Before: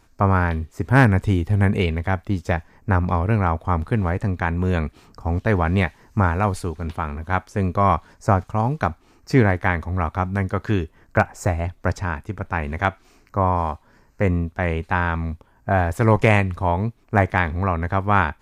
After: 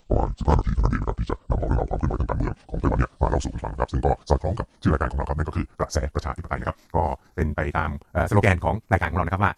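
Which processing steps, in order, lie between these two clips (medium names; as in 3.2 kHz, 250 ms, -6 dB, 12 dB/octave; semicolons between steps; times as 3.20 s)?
pitch bend over the whole clip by -10.5 st ending unshifted; treble shelf 5.5 kHz +9.5 dB; granular stretch 0.52×, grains 66 ms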